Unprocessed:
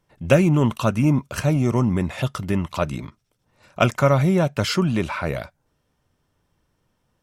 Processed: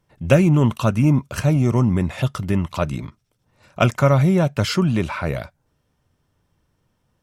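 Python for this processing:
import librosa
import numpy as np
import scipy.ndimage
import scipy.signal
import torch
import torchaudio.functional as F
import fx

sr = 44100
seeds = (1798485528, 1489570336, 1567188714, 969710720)

y = fx.peak_eq(x, sr, hz=100.0, db=4.0, octaves=1.9)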